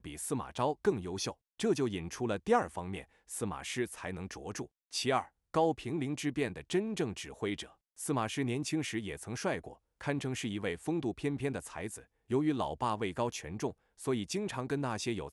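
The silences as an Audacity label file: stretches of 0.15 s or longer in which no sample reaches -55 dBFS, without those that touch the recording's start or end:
1.340000	1.590000	silence
3.050000	3.280000	silence
4.670000	4.910000	silence
5.280000	5.540000	silence
7.730000	7.980000	silence
9.760000	10.010000	silence
12.040000	12.300000	silence
13.730000	13.980000	silence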